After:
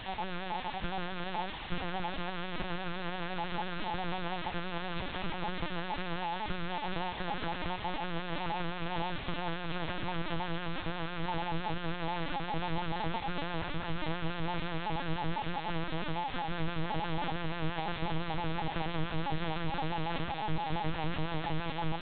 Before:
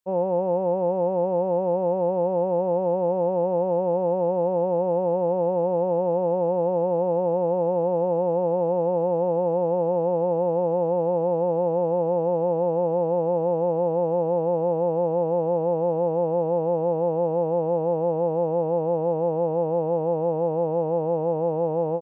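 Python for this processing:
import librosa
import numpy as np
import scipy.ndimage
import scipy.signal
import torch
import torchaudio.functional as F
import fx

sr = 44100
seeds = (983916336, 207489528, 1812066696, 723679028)

p1 = fx.spec_dropout(x, sr, seeds[0], share_pct=36)
p2 = fx.tube_stage(p1, sr, drive_db=27.0, bias=0.25)
p3 = scipy.signal.sosfilt(scipy.signal.ellip(3, 1.0, 60, [160.0, 730.0], 'bandstop', fs=sr, output='sos'), p2)
p4 = fx.tilt_eq(p3, sr, slope=-3.0)
p5 = fx.sample_hold(p4, sr, seeds[1], rate_hz=1100.0, jitter_pct=0)
p6 = p4 + (p5 * librosa.db_to_amplitude(-11.0))
p7 = fx.dereverb_blind(p6, sr, rt60_s=0.59)
p8 = fx.quant_dither(p7, sr, seeds[2], bits=6, dither='triangular')
p9 = p8 + fx.echo_feedback(p8, sr, ms=874, feedback_pct=55, wet_db=-10.0, dry=0)
y = fx.lpc_vocoder(p9, sr, seeds[3], excitation='pitch_kept', order=8)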